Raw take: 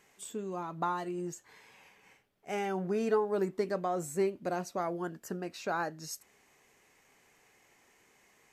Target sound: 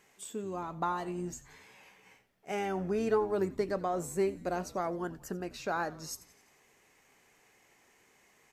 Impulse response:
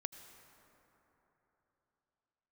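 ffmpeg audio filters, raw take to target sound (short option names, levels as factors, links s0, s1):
-filter_complex "[0:a]asettb=1/sr,asplit=3[s0][s1][s2];[s0]atrim=end=1.064[s3];[s1]atrim=start=1.06:end=2.52,asetpts=PTS-STARTPTS,afade=t=in:d=0.004:c=qsin,afade=t=out:st=1.456:d=0.004:c=qsin,asplit=2[s4][s5];[s5]adelay=16,volume=0.596[s6];[s4][s6]amix=inputs=2:normalize=0,atrim=end_sample=64386[s7];[s2]atrim=start=2.516[s8];[s3][s7]acrossfade=d=0.004:c1=hsin:c2=qsin[s9];[s9][s8]acrossfade=d=0.004:c1=qsin:c2=hsin,asplit=6[s10][s11][s12][s13][s14][s15];[s11]adelay=88,afreqshift=-110,volume=0.112[s16];[s12]adelay=176,afreqshift=-220,volume=0.0638[s17];[s13]adelay=264,afreqshift=-330,volume=0.0363[s18];[s14]adelay=352,afreqshift=-440,volume=0.0209[s19];[s15]adelay=440,afreqshift=-550,volume=0.0119[s20];[s10][s16][s17][s18][s19][s20]amix=inputs=6:normalize=0"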